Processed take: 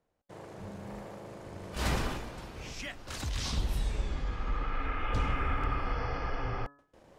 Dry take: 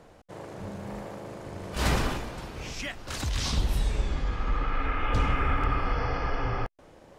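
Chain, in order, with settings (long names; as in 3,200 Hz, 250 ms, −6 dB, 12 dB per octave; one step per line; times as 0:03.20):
noise gate with hold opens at −42 dBFS
hum removal 141.8 Hz, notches 12
level −5 dB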